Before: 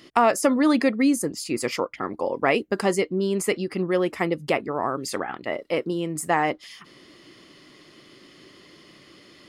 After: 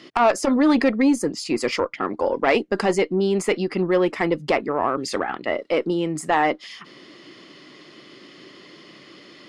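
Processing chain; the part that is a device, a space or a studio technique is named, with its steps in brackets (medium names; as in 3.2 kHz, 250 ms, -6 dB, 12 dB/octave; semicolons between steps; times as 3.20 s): valve radio (band-pass 150–5900 Hz; valve stage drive 13 dB, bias 0.2; transformer saturation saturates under 350 Hz); trim +5.5 dB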